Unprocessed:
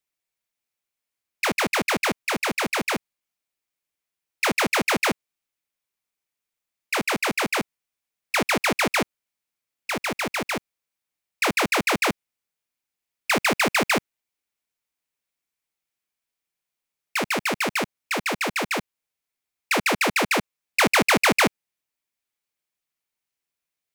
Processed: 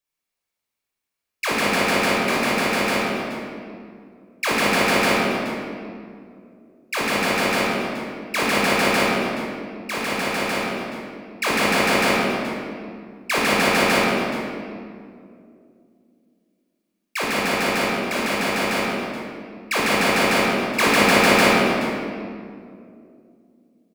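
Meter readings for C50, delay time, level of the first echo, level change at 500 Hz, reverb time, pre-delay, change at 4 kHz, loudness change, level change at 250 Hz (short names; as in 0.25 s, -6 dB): -3.5 dB, 53 ms, -4.5 dB, +6.0 dB, 2.5 s, 18 ms, +3.5 dB, +3.0 dB, +6.0 dB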